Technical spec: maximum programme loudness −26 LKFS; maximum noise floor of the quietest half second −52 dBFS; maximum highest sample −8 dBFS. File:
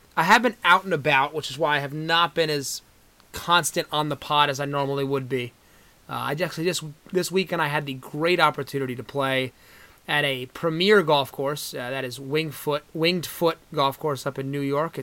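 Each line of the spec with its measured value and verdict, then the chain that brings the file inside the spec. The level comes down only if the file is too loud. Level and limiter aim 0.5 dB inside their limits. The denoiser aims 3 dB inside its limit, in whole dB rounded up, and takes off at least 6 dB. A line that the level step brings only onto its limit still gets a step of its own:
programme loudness −23.5 LKFS: out of spec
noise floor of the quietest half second −56 dBFS: in spec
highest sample −4.0 dBFS: out of spec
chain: level −3 dB
brickwall limiter −8.5 dBFS

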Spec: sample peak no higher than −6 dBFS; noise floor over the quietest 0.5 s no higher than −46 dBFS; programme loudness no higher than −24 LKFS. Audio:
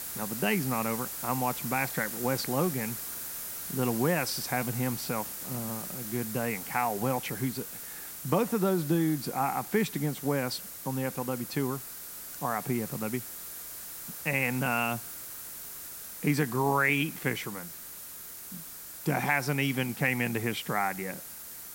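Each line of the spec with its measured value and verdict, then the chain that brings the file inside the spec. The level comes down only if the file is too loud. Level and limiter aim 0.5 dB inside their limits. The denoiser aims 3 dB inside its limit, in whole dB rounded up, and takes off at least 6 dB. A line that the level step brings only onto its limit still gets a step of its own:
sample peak −12.0 dBFS: in spec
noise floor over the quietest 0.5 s −44 dBFS: out of spec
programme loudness −31.0 LKFS: in spec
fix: broadband denoise 6 dB, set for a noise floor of −44 dBFS

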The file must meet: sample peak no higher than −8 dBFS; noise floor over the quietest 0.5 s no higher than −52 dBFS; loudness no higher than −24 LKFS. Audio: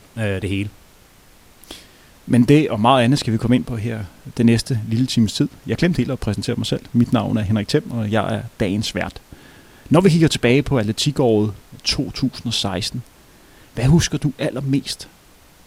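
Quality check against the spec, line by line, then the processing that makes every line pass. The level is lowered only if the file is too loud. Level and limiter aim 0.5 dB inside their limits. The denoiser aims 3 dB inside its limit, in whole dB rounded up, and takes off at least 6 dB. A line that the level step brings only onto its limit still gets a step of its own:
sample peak −2.0 dBFS: out of spec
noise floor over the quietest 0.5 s −49 dBFS: out of spec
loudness −19.0 LKFS: out of spec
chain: level −5.5 dB
brickwall limiter −8.5 dBFS

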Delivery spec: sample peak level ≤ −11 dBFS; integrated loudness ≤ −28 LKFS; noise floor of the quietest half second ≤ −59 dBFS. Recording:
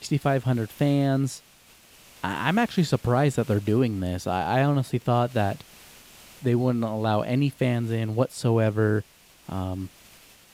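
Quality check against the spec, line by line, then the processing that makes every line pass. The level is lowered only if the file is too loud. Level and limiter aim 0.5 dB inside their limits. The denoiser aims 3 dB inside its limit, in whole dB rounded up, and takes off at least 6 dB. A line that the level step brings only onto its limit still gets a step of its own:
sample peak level −7.5 dBFS: out of spec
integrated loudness −25.0 LKFS: out of spec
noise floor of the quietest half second −54 dBFS: out of spec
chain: broadband denoise 6 dB, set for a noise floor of −54 dBFS
level −3.5 dB
brickwall limiter −11.5 dBFS

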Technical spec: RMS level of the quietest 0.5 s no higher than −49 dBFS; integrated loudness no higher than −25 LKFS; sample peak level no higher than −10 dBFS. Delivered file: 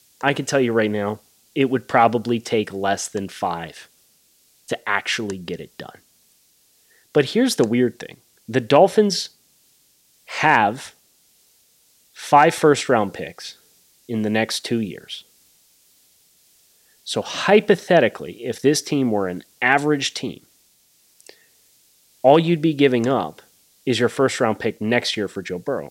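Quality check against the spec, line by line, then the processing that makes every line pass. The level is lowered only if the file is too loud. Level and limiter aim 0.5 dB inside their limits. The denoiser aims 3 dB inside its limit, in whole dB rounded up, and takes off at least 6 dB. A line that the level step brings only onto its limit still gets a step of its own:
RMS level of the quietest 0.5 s −59 dBFS: in spec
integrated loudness −20.0 LKFS: out of spec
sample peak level −1.5 dBFS: out of spec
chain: level −5.5 dB
brickwall limiter −10.5 dBFS

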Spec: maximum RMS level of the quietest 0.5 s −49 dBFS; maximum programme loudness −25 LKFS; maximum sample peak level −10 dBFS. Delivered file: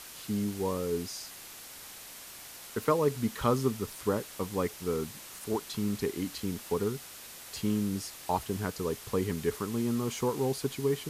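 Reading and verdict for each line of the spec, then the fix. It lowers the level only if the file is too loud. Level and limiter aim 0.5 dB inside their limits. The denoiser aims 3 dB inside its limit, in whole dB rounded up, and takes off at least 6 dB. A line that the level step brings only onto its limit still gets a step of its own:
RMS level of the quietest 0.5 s −47 dBFS: out of spec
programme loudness −32.5 LKFS: in spec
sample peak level −13.0 dBFS: in spec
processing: broadband denoise 6 dB, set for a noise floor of −47 dBFS

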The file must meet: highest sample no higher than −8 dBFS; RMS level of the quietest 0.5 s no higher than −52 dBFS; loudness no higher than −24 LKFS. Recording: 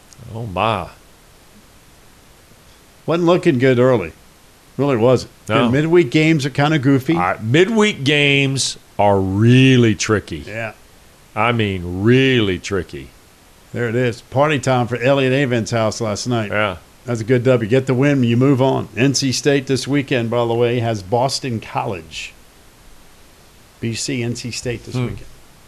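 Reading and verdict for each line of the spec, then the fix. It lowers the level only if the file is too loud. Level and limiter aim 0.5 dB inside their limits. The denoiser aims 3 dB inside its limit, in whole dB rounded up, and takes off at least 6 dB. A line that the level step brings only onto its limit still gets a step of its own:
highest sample −3.0 dBFS: out of spec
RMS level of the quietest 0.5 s −47 dBFS: out of spec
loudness −16.5 LKFS: out of spec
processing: level −8 dB

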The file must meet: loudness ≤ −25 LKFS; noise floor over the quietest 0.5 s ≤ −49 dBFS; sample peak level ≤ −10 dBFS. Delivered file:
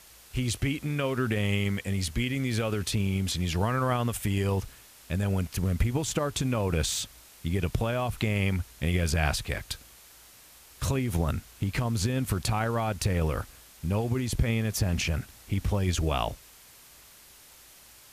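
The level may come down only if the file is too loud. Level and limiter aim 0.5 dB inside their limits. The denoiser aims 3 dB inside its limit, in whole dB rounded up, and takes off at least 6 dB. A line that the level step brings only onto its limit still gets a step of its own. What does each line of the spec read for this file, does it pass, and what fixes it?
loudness −29.0 LKFS: in spec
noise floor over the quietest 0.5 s −53 dBFS: in spec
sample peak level −11.0 dBFS: in spec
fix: no processing needed

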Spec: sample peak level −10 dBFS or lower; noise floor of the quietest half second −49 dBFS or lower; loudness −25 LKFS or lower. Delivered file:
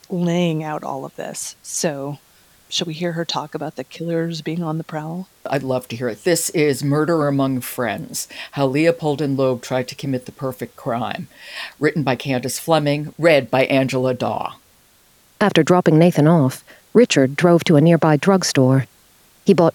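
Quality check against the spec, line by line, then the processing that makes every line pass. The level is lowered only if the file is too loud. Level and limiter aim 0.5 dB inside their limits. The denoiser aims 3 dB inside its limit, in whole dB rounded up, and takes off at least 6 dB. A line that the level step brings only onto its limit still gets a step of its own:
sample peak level −1.5 dBFS: out of spec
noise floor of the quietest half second −54 dBFS: in spec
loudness −19.0 LKFS: out of spec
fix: level −6.5 dB
brickwall limiter −10.5 dBFS

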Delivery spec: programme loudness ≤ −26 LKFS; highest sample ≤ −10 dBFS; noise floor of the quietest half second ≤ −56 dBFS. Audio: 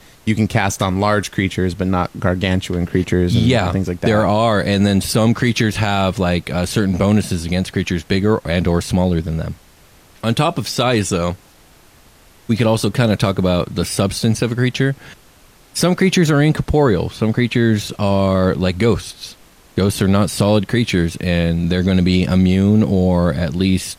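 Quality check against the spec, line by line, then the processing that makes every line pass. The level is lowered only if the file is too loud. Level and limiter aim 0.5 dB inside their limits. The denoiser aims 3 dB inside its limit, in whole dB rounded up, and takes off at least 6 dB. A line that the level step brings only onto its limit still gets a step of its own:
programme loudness −17.0 LKFS: out of spec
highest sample −4.0 dBFS: out of spec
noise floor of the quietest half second −48 dBFS: out of spec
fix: level −9.5 dB

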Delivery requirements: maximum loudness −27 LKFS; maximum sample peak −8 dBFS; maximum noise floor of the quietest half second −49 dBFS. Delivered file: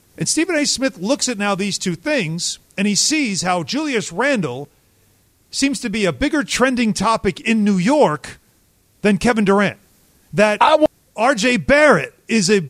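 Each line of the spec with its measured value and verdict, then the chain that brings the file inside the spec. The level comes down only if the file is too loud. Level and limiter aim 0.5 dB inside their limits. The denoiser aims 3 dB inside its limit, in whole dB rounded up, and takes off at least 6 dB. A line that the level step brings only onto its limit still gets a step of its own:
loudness −17.0 LKFS: out of spec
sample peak −2.5 dBFS: out of spec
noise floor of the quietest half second −57 dBFS: in spec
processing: level −10.5 dB

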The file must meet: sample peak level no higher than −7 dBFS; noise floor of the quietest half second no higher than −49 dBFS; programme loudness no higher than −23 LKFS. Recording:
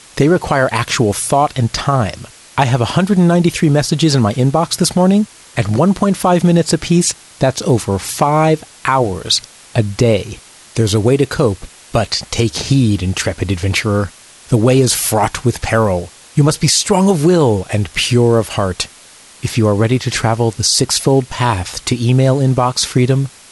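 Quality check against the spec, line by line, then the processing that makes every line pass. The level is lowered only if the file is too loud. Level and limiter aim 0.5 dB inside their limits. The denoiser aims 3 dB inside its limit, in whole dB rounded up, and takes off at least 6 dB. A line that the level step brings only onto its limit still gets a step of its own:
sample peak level −2.0 dBFS: out of spec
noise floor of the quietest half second −41 dBFS: out of spec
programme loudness −14.5 LKFS: out of spec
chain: level −9 dB

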